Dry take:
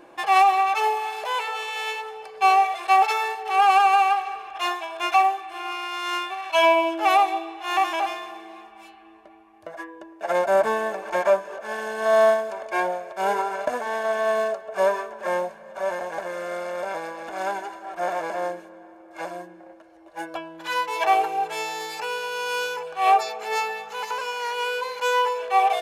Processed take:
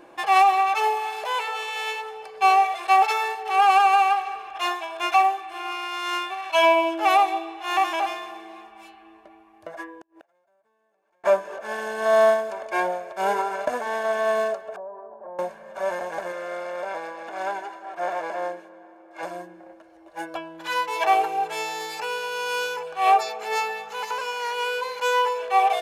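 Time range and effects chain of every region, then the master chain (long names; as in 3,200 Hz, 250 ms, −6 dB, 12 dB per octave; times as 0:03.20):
0:09.94–0:11.24: downward compressor 4 to 1, threshold −35 dBFS + gate with flip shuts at −34 dBFS, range −33 dB
0:14.76–0:15.39: downward compressor, threshold −29 dBFS + transistor ladder low-pass 980 Hz, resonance 40%
0:16.32–0:19.23: high-pass filter 340 Hz 6 dB per octave + high-shelf EQ 5,800 Hz −9 dB + notch filter 1,300 Hz, Q 17
whole clip: no processing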